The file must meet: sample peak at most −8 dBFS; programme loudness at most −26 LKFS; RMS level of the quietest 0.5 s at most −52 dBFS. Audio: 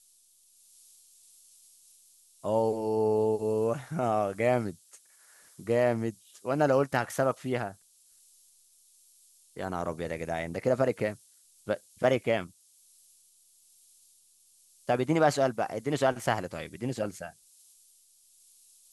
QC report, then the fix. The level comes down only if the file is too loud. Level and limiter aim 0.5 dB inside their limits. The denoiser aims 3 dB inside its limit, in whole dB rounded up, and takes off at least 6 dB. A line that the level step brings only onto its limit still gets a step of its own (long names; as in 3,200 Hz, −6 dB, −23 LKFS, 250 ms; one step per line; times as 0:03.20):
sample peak −10.5 dBFS: in spec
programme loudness −29.5 LKFS: in spec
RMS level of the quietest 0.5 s −63 dBFS: in spec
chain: no processing needed